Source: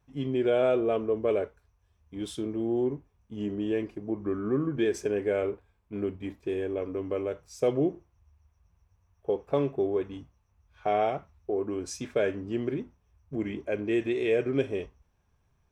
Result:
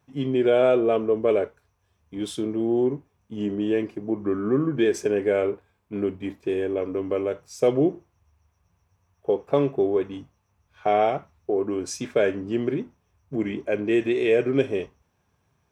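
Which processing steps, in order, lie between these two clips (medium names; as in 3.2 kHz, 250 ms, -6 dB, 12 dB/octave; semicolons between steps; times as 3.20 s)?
high-pass 110 Hz 12 dB/octave; trim +5.5 dB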